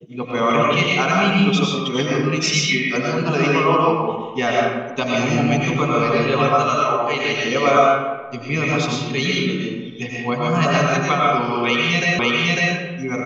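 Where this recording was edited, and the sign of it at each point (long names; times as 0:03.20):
0:12.19: the same again, the last 0.55 s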